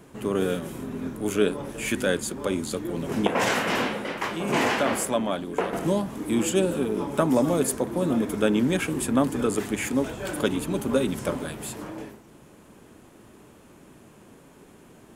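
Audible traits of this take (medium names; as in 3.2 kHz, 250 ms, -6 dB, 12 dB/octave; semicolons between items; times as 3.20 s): noise floor -52 dBFS; spectral tilt -4.5 dB/octave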